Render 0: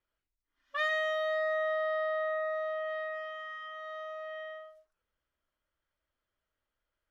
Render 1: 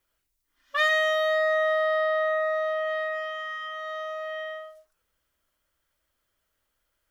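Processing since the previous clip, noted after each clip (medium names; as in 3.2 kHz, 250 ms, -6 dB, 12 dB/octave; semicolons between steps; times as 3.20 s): treble shelf 4.9 kHz +10 dB; trim +7 dB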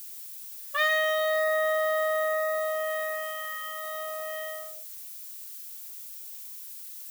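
added noise violet -40 dBFS; trim -2 dB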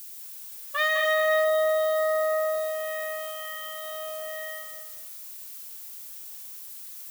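bit-crushed delay 206 ms, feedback 35%, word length 8-bit, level -5.5 dB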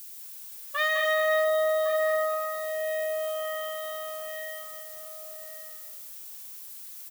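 echo from a far wall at 190 m, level -8 dB; trim -1.5 dB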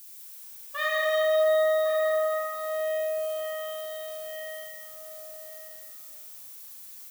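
reverberation RT60 1.7 s, pre-delay 18 ms, DRR -1 dB; trim -4.5 dB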